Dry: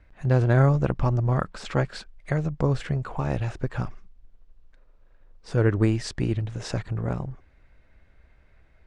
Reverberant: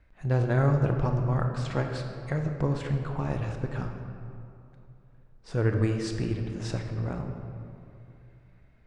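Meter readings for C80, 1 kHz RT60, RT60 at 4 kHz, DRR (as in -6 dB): 6.0 dB, 2.6 s, 1.4 s, 4.0 dB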